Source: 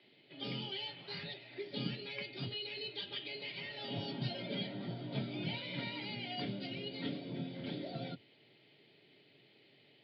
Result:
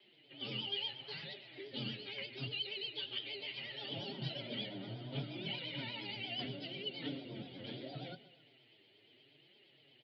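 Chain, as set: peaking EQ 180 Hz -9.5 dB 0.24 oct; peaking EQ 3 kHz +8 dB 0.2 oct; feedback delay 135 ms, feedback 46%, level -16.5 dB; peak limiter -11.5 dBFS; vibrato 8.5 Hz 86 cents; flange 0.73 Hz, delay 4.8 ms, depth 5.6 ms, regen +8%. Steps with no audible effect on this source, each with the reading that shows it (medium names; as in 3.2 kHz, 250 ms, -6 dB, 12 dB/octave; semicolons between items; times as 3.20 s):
peak limiter -11.5 dBFS: peak at its input -25.0 dBFS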